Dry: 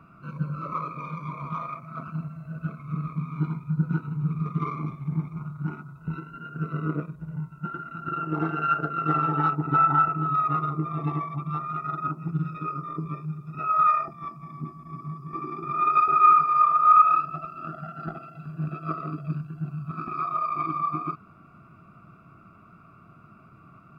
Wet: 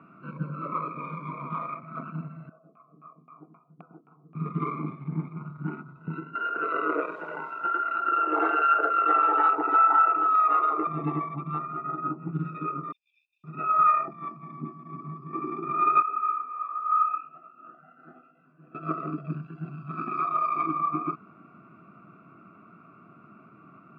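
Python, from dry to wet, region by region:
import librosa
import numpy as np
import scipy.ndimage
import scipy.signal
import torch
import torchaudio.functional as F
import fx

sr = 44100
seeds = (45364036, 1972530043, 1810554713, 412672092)

y = fx.chain(x, sr, fx.filter_lfo_lowpass(shape='saw_down', hz=3.8, low_hz=250.0, high_hz=1900.0, q=1.5),
    fx.vowel_filter(vowel='a'), at=(2.49, 4.35))
y = fx.chain(y, sr, fx.highpass(hz=470.0, slope=24),
    fx.env_flatten(amount_pct=50), at=(6.35, 10.87))
y = fx.chain(y, sr, fx.lowpass(hz=1200.0, slope=6),
    fx.doubler(ms=16.0, db=-7.0), at=(11.66, 12.33))
y = fx.chain(y, sr, fx.over_compress(threshold_db=-36.0, ratio=-1.0),
    fx.cheby_ripple_highpass(hz=2600.0, ripple_db=3), at=(12.92, 13.44))
y = fx.chain(y, sr, fx.bass_treble(bass_db=-8, treble_db=-11),
    fx.comb_fb(f0_hz=250.0, decay_s=0.27, harmonics='all', damping=0.0, mix_pct=80),
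    fx.detune_double(cents=45), at=(16.02, 18.75))
y = fx.chain(y, sr, fx.high_shelf(hz=3200.0, db=9.0),
    fx.hum_notches(base_hz=50, count=7), at=(19.42, 20.64))
y = scipy.signal.sosfilt(scipy.signal.cheby1(2, 1.0, [260.0, 2500.0], 'bandpass', fs=sr, output='sos'), y)
y = fx.low_shelf(y, sr, hz=410.0, db=6.5)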